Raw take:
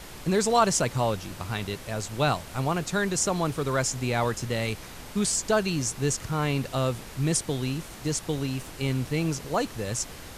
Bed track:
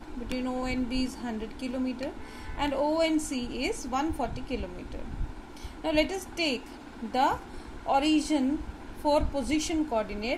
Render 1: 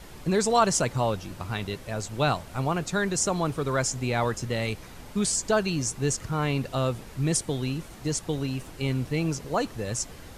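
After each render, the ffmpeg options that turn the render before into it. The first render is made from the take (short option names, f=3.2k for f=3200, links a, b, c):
-af "afftdn=nr=6:nf=-43"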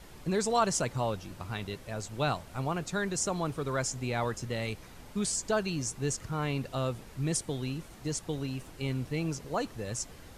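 -af "volume=-5.5dB"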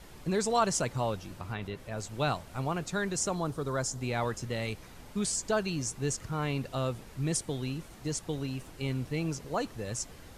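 -filter_complex "[0:a]asettb=1/sr,asplit=3[a][b][c];[a]atrim=end=1.394[d];[b]atrim=start=1.39:end=1.98,asetpts=PTS-STARTPTS,afade=t=in:d=0.004:c=qsin,afade=t=out:st=0.586:d=0.004:c=qsin,acrossover=split=3200[e][f];[f]acompressor=threshold=-57dB:ratio=4:attack=1:release=60[g];[e][g]amix=inputs=2:normalize=0[h];[c]atrim=start=1.976[i];[d][h]acrossfade=d=0.004:c1=hsin:c2=qsin[j];[j][i]acrossfade=d=0.004:c1=qsin:c2=hsin,asettb=1/sr,asplit=3[k][l][m];[k]atrim=end=3.354[n];[l]atrim=start=3.35:end=4.01,asetpts=PTS-STARTPTS,afade=t=in:d=0.004:c=qsin,afade=t=out:st=0.656:d=0.004:c=qsin,equalizer=f=2.4k:w=1.9:g=-9[o];[m]atrim=start=4.006[p];[n][o]acrossfade=d=0.004:c1=hsin:c2=qsin[q];[q][p]acrossfade=d=0.004:c1=qsin:c2=hsin"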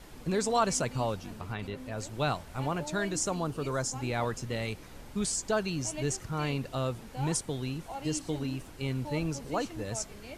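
-filter_complex "[1:a]volume=-15.5dB[a];[0:a][a]amix=inputs=2:normalize=0"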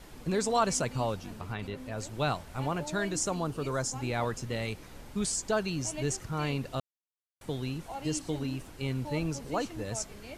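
-filter_complex "[0:a]asplit=3[a][b][c];[a]atrim=end=6.8,asetpts=PTS-STARTPTS,afade=t=out:st=6.796:d=0.004:c=hsin[d];[b]atrim=start=6.8:end=7.41,asetpts=PTS-STARTPTS,volume=0[e];[c]atrim=start=7.41,asetpts=PTS-STARTPTS,afade=t=in:d=0.004:c=hsin[f];[d][e][f]concat=n=3:v=0:a=1"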